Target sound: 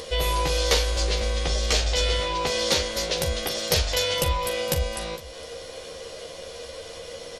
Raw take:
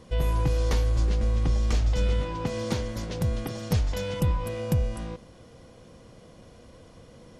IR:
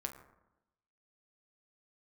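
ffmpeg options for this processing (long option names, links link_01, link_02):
-filter_complex "[0:a]tiltshelf=frequency=930:gain=-6,asplit=2[link_01][link_02];[link_02]adelay=13,volume=-4dB[link_03];[link_01][link_03]amix=inputs=2:normalize=0,acompressor=mode=upward:threshold=-40dB:ratio=2.5,equalizer=frequency=125:width_type=o:width=1:gain=-9,equalizer=frequency=250:width_type=o:width=1:gain=-9,equalizer=frequency=500:width_type=o:width=1:gain=11,equalizer=frequency=1000:width_type=o:width=1:gain=-4,equalizer=frequency=4000:width_type=o:width=1:gain=5,aecho=1:1:42|459:0.237|0.106,volume=5.5dB"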